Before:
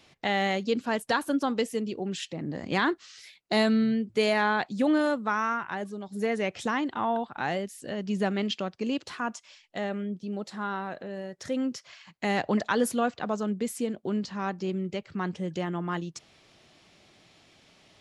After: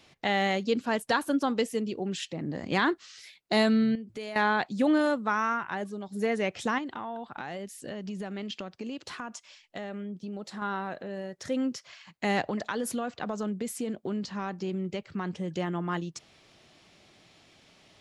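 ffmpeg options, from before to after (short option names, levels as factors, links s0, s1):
-filter_complex "[0:a]asettb=1/sr,asplit=3[s0][s1][s2];[s0]atrim=end=3.954[s3];[s1]atrim=start=3.95:end=4.36,asetpts=PTS-STARTPTS,afade=t=in:d=0.004:c=qsin,afade=t=out:st=0.406:d=0.004:c=qsin,acompressor=threshold=0.0112:ratio=3:attack=3.2:release=140:knee=1:detection=peak[s4];[s2]atrim=start=4.356[s5];[s3][s4]acrossfade=d=0.004:c1=hsin:c2=qsin[s6];[s6][s5]acrossfade=d=0.004:c1=qsin:c2=hsin,asettb=1/sr,asplit=3[s7][s8][s9];[s7]atrim=end=6.784[s10];[s8]atrim=start=6.78:end=10.62,asetpts=PTS-STARTPTS,afade=t=in:d=0.004:c=qsin,afade=t=out:st=3.836:d=0.004:c=qsin,acompressor=threshold=0.0224:ratio=6:attack=3.2:release=140:knee=1:detection=peak[s11];[s9]atrim=start=10.616[s12];[s10][s11]acrossfade=d=0.004:c1=hsin:c2=qsin[s13];[s13][s12]acrossfade=d=0.004:c1=qsin:c2=hsin,asettb=1/sr,asplit=3[s14][s15][s16];[s14]atrim=end=12.484[s17];[s15]atrim=start=12.48:end=15.53,asetpts=PTS-STARTPTS,afade=t=in:d=0.004:c=qsin,afade=t=out:st=3.046:d=0.004:c=qsin,acompressor=threshold=0.0447:ratio=6:attack=3.2:release=140:knee=1:detection=peak[s18];[s16]atrim=start=15.526[s19];[s17][s18]acrossfade=d=0.004:c1=hsin:c2=qsin[s20];[s20][s19]acrossfade=d=0.004:c1=qsin:c2=hsin"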